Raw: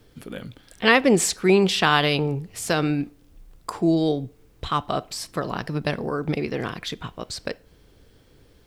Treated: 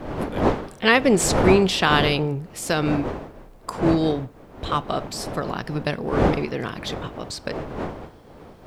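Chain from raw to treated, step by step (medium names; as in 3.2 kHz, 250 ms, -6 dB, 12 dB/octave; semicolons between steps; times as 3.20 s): wind noise 580 Hz -28 dBFS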